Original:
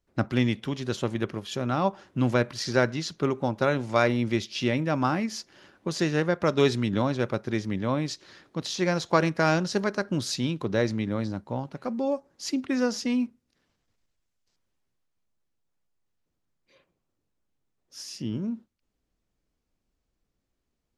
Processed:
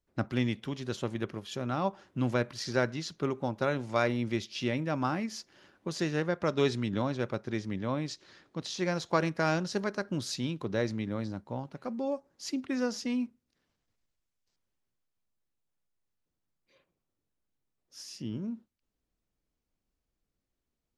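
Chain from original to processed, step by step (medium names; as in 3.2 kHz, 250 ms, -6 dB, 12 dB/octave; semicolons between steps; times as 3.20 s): 6.19–8.76 s: low-pass 10 kHz 12 dB/octave; trim -5.5 dB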